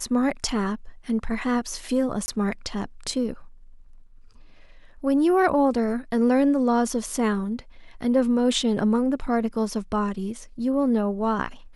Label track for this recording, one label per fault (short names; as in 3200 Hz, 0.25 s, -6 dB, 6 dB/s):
2.260000	2.280000	gap 20 ms